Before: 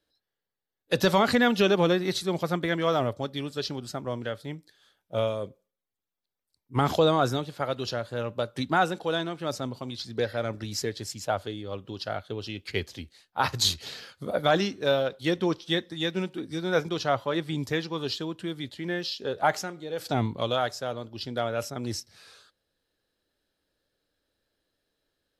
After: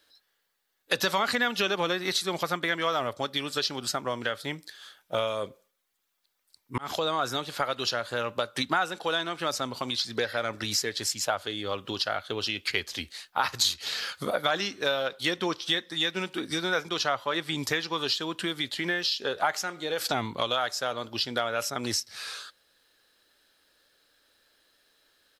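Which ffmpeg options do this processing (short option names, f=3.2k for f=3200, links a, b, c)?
-filter_complex "[0:a]asplit=2[a][b];[a]atrim=end=6.78,asetpts=PTS-STARTPTS,afade=t=out:st=6.776:d=0.004:c=hsin[c];[b]atrim=start=6.78,asetpts=PTS-STARTPTS,afade=t=in:d=0.99:c=qsin[d];[c][d]concat=n=2:v=0:a=1,firequalizer=gain_entry='entry(130,0);entry(230,4);entry(1200,15)':delay=0.05:min_phase=1,acompressor=threshold=-28dB:ratio=3"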